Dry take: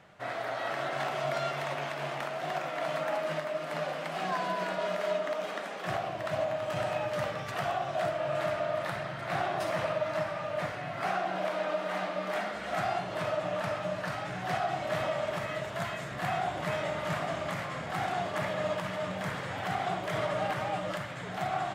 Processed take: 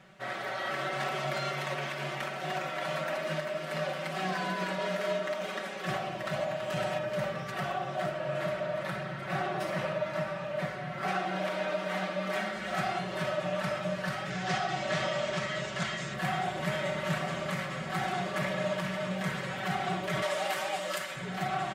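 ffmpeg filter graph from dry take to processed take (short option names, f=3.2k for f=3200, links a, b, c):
-filter_complex "[0:a]asettb=1/sr,asplit=3[a][b][c];[a]atrim=end=6.984[d];[b]atrim=start=6.98:end=11.08,asetpts=PTS-STARTPTS,afade=t=in:d=0.004:c=qsin,afade=t=out:st=4.096:d=0.004:c=qsin,lowpass=f=1.7k:p=1,aemphasis=mode=production:type=50kf[e];[c]atrim=start=11.076[f];[d][e]acrossfade=d=0.004:c1=hsin:c2=qsin[g];[g][f]acrossfade=d=0.004:c1=qsin:c2=hsin,asettb=1/sr,asplit=3[h][i][j];[h]atrim=end=14.304[k];[i]atrim=start=14.3:end=16.14,asetpts=PTS-STARTPTS,afade=t=in:d=0.004:c=qsin,afade=t=out:st=1.836:d=0.004:c=qsin,lowpass=f=6.8k:w=0.5412,lowpass=f=6.8k:w=1.3066,aemphasis=mode=production:type=50kf[l];[j]atrim=start=16.136[m];[k][l]acrossfade=d=0.004:c1=hsin:c2=qsin[n];[n][m]acrossfade=d=0.004:c1=qsin:c2=hsin,asettb=1/sr,asplit=3[o][p][q];[o]atrim=end=20.224[r];[p]atrim=start=20.22:end=21.16,asetpts=PTS-STARTPTS,afade=t=in:d=0.004:c=qsin,afade=t=out:st=0.936:d=0.004:c=qsin,highpass=370,highshelf=f=4.7k:g=11.5[s];[q]atrim=start=21.156[t];[r][s]acrossfade=d=0.004:c1=hsin:c2=qsin[u];[u][t]acrossfade=d=0.004:c1=qsin:c2=hsin,equalizer=f=820:w=1.4:g=-5.5,aecho=1:1:5.3:0.88"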